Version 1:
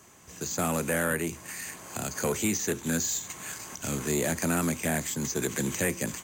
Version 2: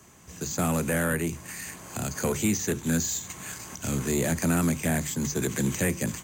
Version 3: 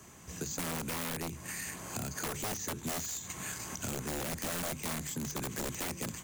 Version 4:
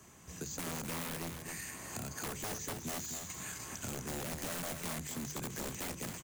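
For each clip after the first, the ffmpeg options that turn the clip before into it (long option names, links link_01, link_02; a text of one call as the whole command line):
ffmpeg -i in.wav -filter_complex "[0:a]bandreject=frequency=50:width_type=h:width=6,bandreject=frequency=100:width_type=h:width=6,bandreject=frequency=150:width_type=h:width=6,acrossover=split=210[link_01][link_02];[link_01]acontrast=89[link_03];[link_03][link_02]amix=inputs=2:normalize=0" out.wav
ffmpeg -i in.wav -af "aeval=exprs='(mod(10.6*val(0)+1,2)-1)/10.6':channel_layout=same,acompressor=threshold=-35dB:ratio=6" out.wav
ffmpeg -i in.wav -af "aecho=1:1:255:0.447,volume=-4dB" out.wav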